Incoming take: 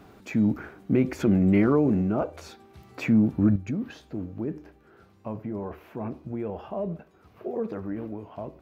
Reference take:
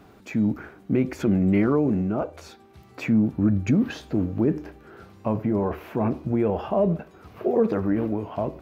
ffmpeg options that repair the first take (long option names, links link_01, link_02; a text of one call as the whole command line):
ffmpeg -i in.wav -af "asetnsamples=nb_out_samples=441:pad=0,asendcmd='3.56 volume volume 9.5dB',volume=0dB" out.wav